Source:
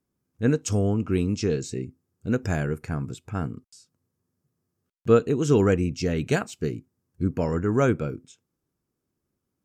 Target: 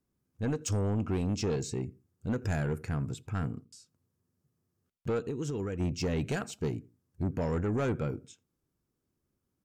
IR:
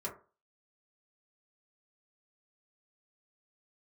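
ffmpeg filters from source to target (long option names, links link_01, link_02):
-filter_complex "[0:a]alimiter=limit=-16dB:level=0:latency=1:release=112,asplit=3[link_01][link_02][link_03];[link_01]afade=type=out:start_time=5.21:duration=0.02[link_04];[link_02]acompressor=threshold=-30dB:ratio=4,afade=type=in:start_time=5.21:duration=0.02,afade=type=out:start_time=5.79:duration=0.02[link_05];[link_03]afade=type=in:start_time=5.79:duration=0.02[link_06];[link_04][link_05][link_06]amix=inputs=3:normalize=0,lowshelf=frequency=84:gain=6.5,asplit=2[link_07][link_08];[link_08]adelay=84,lowpass=frequency=1100:poles=1,volume=-22dB,asplit=2[link_09][link_10];[link_10]adelay=84,lowpass=frequency=1100:poles=1,volume=0.32[link_11];[link_07][link_09][link_11]amix=inputs=3:normalize=0,asoftclip=type=tanh:threshold=-22.5dB,volume=-2.5dB"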